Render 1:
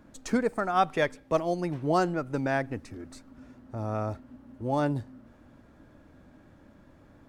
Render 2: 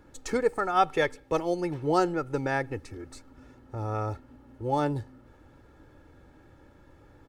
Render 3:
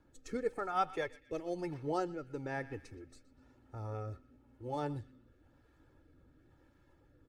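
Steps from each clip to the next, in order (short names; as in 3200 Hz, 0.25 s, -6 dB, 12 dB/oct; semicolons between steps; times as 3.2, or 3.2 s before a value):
comb 2.3 ms, depth 59%
bin magnitudes rounded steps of 15 dB; narrowing echo 0.121 s, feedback 53%, band-pass 2700 Hz, level -15 dB; rotary speaker horn 1 Hz; gain -8.5 dB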